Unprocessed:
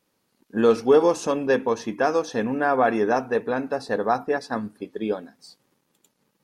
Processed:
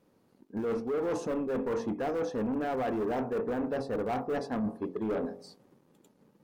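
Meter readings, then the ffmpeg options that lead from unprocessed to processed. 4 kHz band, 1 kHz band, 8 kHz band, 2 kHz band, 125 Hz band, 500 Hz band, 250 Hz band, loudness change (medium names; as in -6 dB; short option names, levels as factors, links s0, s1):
-12.0 dB, -11.5 dB, under -10 dB, -14.0 dB, -4.0 dB, -10.0 dB, -6.0 dB, -9.5 dB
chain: -filter_complex "[0:a]lowshelf=f=170:g=-4.5,asplit=2[s0][s1];[s1]aeval=exprs='(mod(10*val(0)+1,2)-1)/10':c=same,volume=0.282[s2];[s0][s2]amix=inputs=2:normalize=0,tiltshelf=f=1100:g=9.5,bandreject=f=45.55:t=h:w=4,bandreject=f=91.1:t=h:w=4,bandreject=f=136.65:t=h:w=4,bandreject=f=182.2:t=h:w=4,bandreject=f=227.75:t=h:w=4,bandreject=f=273.3:t=h:w=4,bandreject=f=318.85:t=h:w=4,bandreject=f=364.4:t=h:w=4,bandreject=f=409.95:t=h:w=4,bandreject=f=455.5:t=h:w=4,bandreject=f=501.05:t=h:w=4,bandreject=f=546.6:t=h:w=4,bandreject=f=592.15:t=h:w=4,bandreject=f=637.7:t=h:w=4,bandreject=f=683.25:t=h:w=4,bandreject=f=728.8:t=h:w=4,bandreject=f=774.35:t=h:w=4,bandreject=f=819.9:t=h:w=4,bandreject=f=865.45:t=h:w=4,bandreject=f=911:t=h:w=4,bandreject=f=956.55:t=h:w=4,bandreject=f=1002.1:t=h:w=4,bandreject=f=1047.65:t=h:w=4,bandreject=f=1093.2:t=h:w=4,bandreject=f=1138.75:t=h:w=4,bandreject=f=1184.3:t=h:w=4,bandreject=f=1229.85:t=h:w=4,areverse,acompressor=threshold=0.0631:ratio=12,areverse,asoftclip=type=tanh:threshold=0.0473"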